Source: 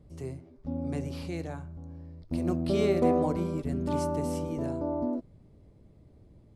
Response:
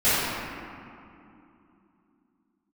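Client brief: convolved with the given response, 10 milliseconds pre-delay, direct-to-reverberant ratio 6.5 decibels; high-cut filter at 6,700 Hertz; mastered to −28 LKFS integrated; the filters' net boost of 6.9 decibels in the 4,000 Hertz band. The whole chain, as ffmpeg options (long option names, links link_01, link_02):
-filter_complex "[0:a]lowpass=6700,equalizer=frequency=4000:width_type=o:gain=9,asplit=2[link_01][link_02];[1:a]atrim=start_sample=2205,adelay=10[link_03];[link_02][link_03]afir=irnorm=-1:irlink=0,volume=-26dB[link_04];[link_01][link_04]amix=inputs=2:normalize=0,volume=1.5dB"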